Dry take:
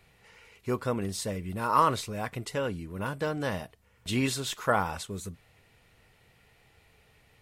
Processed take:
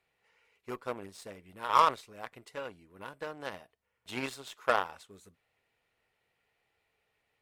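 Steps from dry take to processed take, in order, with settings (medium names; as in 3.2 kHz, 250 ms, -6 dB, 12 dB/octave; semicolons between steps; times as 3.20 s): Chebyshev shaper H 4 -23 dB, 7 -19 dB, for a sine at -10 dBFS; tone controls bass -12 dB, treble -5 dB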